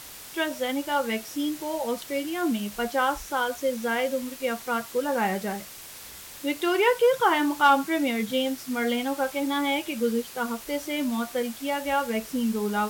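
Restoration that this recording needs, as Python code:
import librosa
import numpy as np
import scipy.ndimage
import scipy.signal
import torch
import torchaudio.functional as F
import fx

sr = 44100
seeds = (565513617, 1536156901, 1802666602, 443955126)

y = fx.fix_declip(x, sr, threshold_db=-10.5)
y = fx.noise_reduce(y, sr, print_start_s=5.65, print_end_s=6.15, reduce_db=30.0)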